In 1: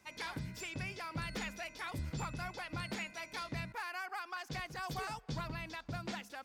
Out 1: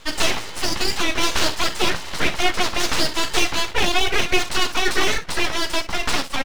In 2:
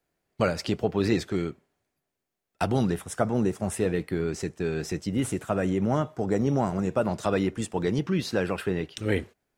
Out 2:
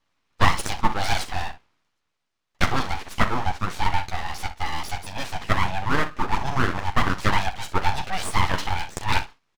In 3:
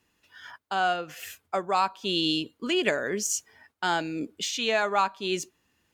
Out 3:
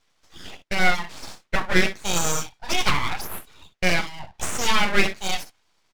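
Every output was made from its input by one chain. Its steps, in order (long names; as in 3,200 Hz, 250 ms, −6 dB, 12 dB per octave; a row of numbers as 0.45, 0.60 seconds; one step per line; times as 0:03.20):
Chebyshev band-pass filter 430–4,900 Hz, order 3
ambience of single reflections 11 ms −4.5 dB, 40 ms −12 dB, 63 ms −12.5 dB
full-wave rectification
normalise the peak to −1.5 dBFS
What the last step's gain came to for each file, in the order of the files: +25.0, +9.0, +7.0 decibels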